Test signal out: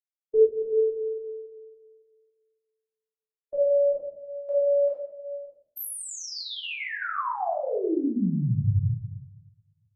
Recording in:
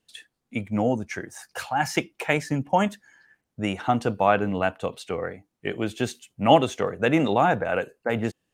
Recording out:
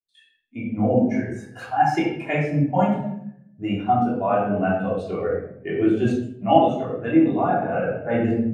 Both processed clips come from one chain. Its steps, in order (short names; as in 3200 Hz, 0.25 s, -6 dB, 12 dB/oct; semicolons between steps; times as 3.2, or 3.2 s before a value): shoebox room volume 520 m³, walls mixed, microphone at 3.2 m; vocal rider within 4 dB 0.5 s; spectral expander 1.5:1; gain -3 dB